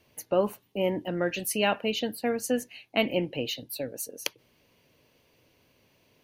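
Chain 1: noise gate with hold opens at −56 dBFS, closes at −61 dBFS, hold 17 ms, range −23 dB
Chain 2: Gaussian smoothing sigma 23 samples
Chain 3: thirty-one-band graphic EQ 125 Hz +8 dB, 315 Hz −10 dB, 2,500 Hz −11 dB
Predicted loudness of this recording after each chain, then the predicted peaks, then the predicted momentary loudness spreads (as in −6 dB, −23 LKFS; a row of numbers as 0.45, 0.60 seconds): −29.5, −37.5, −31.0 LKFS; −8.5, −23.0, −9.5 dBFS; 8, 11, 7 LU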